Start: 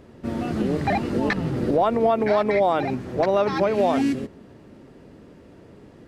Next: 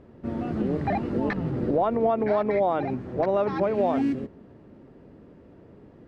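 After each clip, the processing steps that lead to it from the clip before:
low-pass filter 1,300 Hz 6 dB per octave
level −2.5 dB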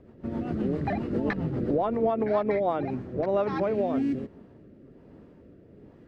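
rotating-speaker cabinet horn 7.5 Hz, later 1.2 Hz, at 0:02.28

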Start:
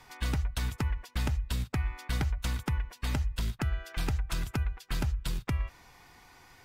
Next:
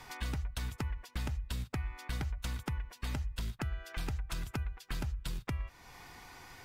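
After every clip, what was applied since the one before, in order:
downward compressor 2 to 1, threshold −46 dBFS, peak gain reduction 11 dB
level +4 dB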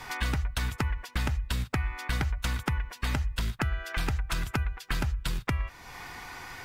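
dynamic equaliser 1,600 Hz, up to +5 dB, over −59 dBFS, Q 0.77
level +7 dB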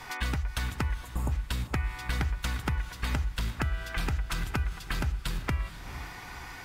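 time-frequency box erased 0:01.00–0:01.32, 1,200–6,600 Hz
feedback delay with all-pass diffusion 453 ms, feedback 45%, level −12 dB
level −1.5 dB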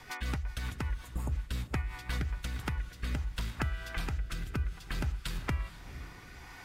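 rotating-speaker cabinet horn 5.5 Hz, later 0.6 Hz, at 0:02.06
level −2.5 dB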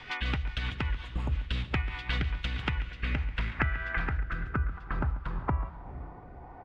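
low-pass filter sweep 3,100 Hz → 700 Hz, 0:02.59–0:06.38
single-tap delay 139 ms −17 dB
level +3 dB

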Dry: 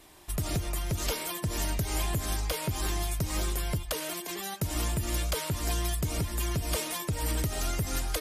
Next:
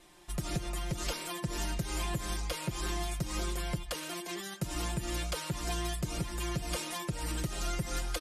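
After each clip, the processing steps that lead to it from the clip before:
low-pass filter 9,600 Hz 12 dB per octave
comb filter 5.7 ms, depth 67%
level −5 dB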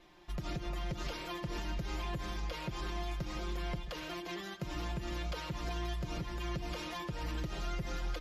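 brickwall limiter −27.5 dBFS, peak gain reduction 6 dB
moving average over 5 samples
echo with a time of its own for lows and highs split 470 Hz, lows 139 ms, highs 344 ms, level −13.5 dB
level −1 dB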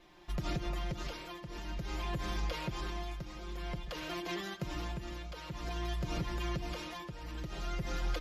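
shaped tremolo triangle 0.52 Hz, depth 70%
level +3.5 dB

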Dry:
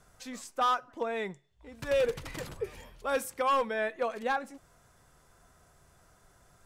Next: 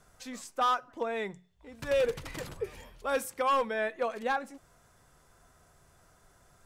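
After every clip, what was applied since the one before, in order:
mains-hum notches 60/120/180 Hz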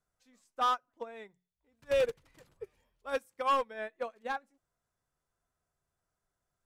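expander for the loud parts 2.5 to 1, over −40 dBFS

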